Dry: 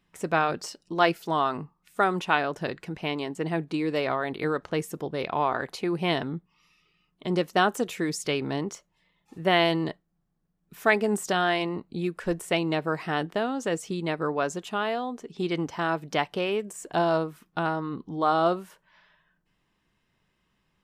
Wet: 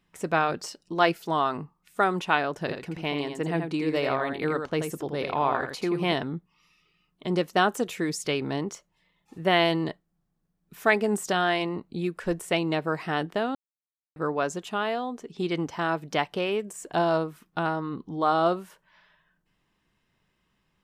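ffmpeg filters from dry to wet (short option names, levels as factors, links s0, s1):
-filter_complex "[0:a]asettb=1/sr,asplit=3[s0][s1][s2];[s0]atrim=end=2.614[s3];[s1]atrim=start=2.61:end=6.13,asetpts=PTS-STARTPTS,afade=t=in:d=0.004:c=qsin,afade=t=out:st=3.516:d=0.004:c=qsin,aecho=1:1:83:0.473,atrim=end_sample=155232[s4];[s2]atrim=start=6.126[s5];[s3][s4]acrossfade=d=0.004:c1=hsin:c2=qsin[s6];[s6][s5]acrossfade=d=0.004:c1=qsin:c2=hsin,asplit=3[s7][s8][s9];[s7]atrim=end=13.55,asetpts=PTS-STARTPTS,afade=t=out:st=13.546:d=0.004:c=hsin[s10];[s8]atrim=start=13.55:end=14.16,asetpts=PTS-STARTPTS,volume=0[s11];[s9]atrim=start=14.16,asetpts=PTS-STARTPTS,afade=t=in:d=0.004:c=hsin[s12];[s10][s11][s12]concat=n=3:v=0:a=1"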